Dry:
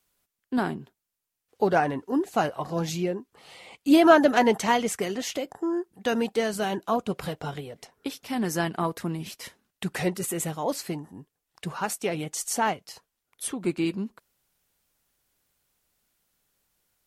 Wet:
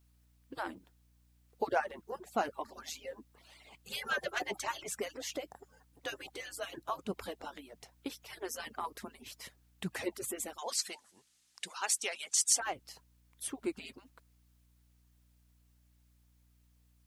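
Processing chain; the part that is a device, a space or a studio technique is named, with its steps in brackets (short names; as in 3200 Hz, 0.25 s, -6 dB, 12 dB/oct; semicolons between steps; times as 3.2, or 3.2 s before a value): median-filter separation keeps percussive; video cassette with head-switching buzz (buzz 60 Hz, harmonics 5, -60 dBFS -8 dB/oct; white noise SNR 37 dB); 10.58–12.6 weighting filter ITU-R 468; gain -7.5 dB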